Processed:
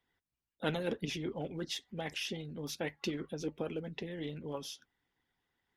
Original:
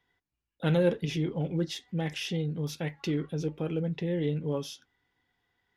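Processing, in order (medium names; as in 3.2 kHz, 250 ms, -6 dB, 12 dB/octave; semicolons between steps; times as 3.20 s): harmonic-percussive split harmonic -14 dB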